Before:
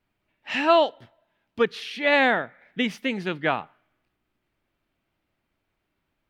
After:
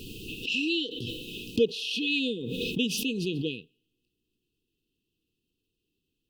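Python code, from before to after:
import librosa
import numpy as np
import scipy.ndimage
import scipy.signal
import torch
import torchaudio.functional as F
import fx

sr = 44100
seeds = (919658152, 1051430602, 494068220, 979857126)

y = fx.brickwall_bandstop(x, sr, low_hz=500.0, high_hz=2500.0)
y = fx.low_shelf(y, sr, hz=250.0, db=-6.0)
y = fx.pre_swell(y, sr, db_per_s=27.0)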